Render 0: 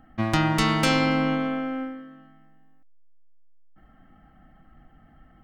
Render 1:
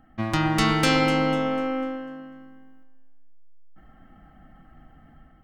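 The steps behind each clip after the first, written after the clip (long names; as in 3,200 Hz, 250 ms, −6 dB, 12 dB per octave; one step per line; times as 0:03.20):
delay that swaps between a low-pass and a high-pass 124 ms, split 1,300 Hz, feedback 59%, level −8 dB
automatic gain control gain up to 5 dB
level −2.5 dB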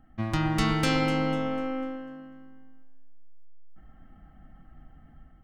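low-shelf EQ 150 Hz +8.5 dB
level −6 dB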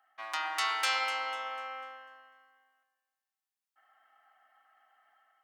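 high-pass filter 810 Hz 24 dB per octave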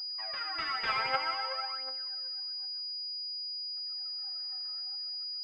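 rotating-speaker cabinet horn 0.6 Hz
phase shifter 0.53 Hz, delay 4.8 ms, feedback 77%
switching amplifier with a slow clock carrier 4,900 Hz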